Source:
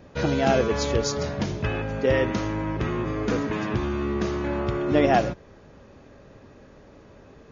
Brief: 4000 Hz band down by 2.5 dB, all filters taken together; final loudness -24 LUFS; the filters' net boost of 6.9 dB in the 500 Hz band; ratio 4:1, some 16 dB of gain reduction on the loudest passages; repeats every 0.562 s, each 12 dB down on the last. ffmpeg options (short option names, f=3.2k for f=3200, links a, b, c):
-af "equalizer=f=500:t=o:g=8.5,equalizer=f=4k:t=o:g=-3.5,acompressor=threshold=-30dB:ratio=4,aecho=1:1:562|1124|1686:0.251|0.0628|0.0157,volume=8dB"